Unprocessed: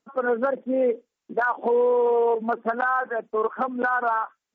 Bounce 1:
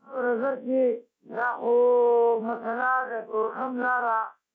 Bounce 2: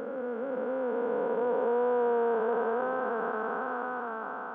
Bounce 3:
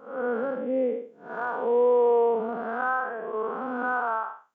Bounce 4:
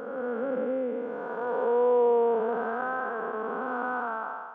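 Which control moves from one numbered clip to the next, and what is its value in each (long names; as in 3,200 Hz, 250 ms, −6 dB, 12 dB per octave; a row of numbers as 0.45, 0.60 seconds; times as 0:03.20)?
spectrum smeared in time, width: 86, 1,600, 211, 587 milliseconds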